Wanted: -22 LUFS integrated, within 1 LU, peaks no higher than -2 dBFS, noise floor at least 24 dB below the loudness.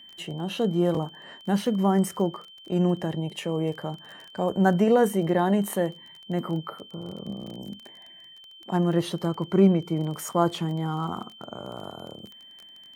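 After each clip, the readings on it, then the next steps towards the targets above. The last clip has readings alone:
tick rate 23 per s; steady tone 3.1 kHz; tone level -46 dBFS; loudness -26.0 LUFS; peak level -8.0 dBFS; loudness target -22.0 LUFS
-> de-click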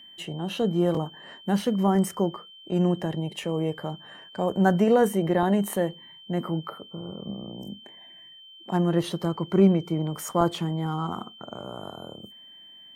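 tick rate 0.077 per s; steady tone 3.1 kHz; tone level -46 dBFS
-> band-stop 3.1 kHz, Q 30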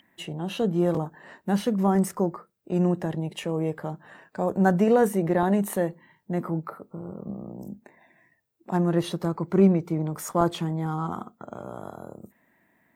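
steady tone not found; loudness -25.5 LUFS; peak level -8.0 dBFS; loudness target -22.0 LUFS
-> trim +3.5 dB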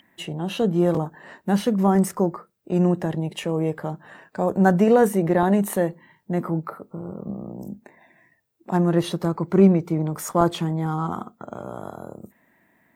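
loudness -22.0 LUFS; peak level -4.5 dBFS; noise floor -65 dBFS

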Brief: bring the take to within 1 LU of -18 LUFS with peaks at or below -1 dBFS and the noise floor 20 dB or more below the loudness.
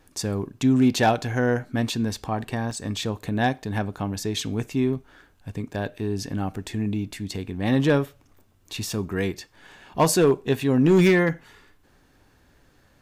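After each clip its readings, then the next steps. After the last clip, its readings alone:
clipped samples 0.4%; clipping level -11.5 dBFS; dropouts 1; longest dropout 2.1 ms; loudness -24.0 LUFS; peak level -11.5 dBFS; loudness target -18.0 LUFS
-> clip repair -11.5 dBFS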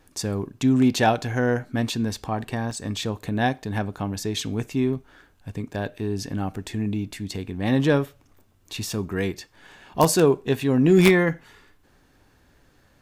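clipped samples 0.0%; dropouts 1; longest dropout 2.1 ms
-> interpolate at 2.71 s, 2.1 ms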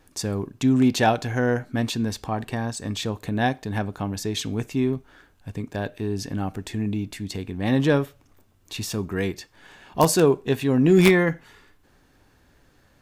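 dropouts 0; loudness -23.5 LUFS; peak level -2.5 dBFS; loudness target -18.0 LUFS
-> trim +5.5 dB; peak limiter -1 dBFS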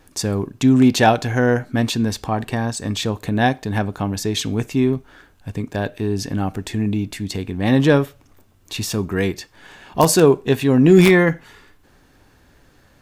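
loudness -18.5 LUFS; peak level -1.0 dBFS; noise floor -54 dBFS

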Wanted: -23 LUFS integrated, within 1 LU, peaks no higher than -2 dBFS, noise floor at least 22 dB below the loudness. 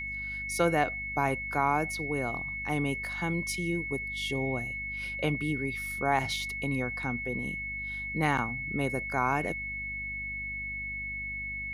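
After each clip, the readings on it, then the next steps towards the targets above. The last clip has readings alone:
hum 50 Hz; highest harmonic 250 Hz; hum level -42 dBFS; steady tone 2.2 kHz; tone level -34 dBFS; loudness -31.0 LUFS; peak level -13.5 dBFS; loudness target -23.0 LUFS
-> de-hum 50 Hz, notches 5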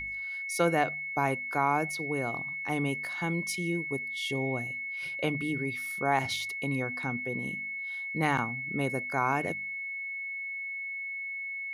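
hum not found; steady tone 2.2 kHz; tone level -34 dBFS
-> band-stop 2.2 kHz, Q 30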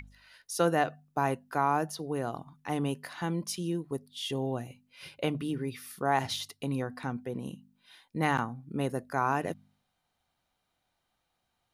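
steady tone not found; loudness -32.5 LUFS; peak level -14.0 dBFS; loudness target -23.0 LUFS
-> trim +9.5 dB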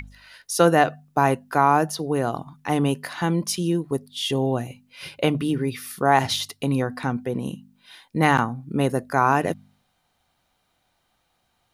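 loudness -23.0 LUFS; peak level -4.5 dBFS; noise floor -71 dBFS

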